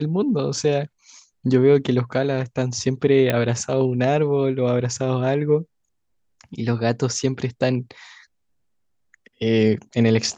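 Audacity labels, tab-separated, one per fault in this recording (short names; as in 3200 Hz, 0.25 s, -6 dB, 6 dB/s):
3.300000	3.300000	pop -7 dBFS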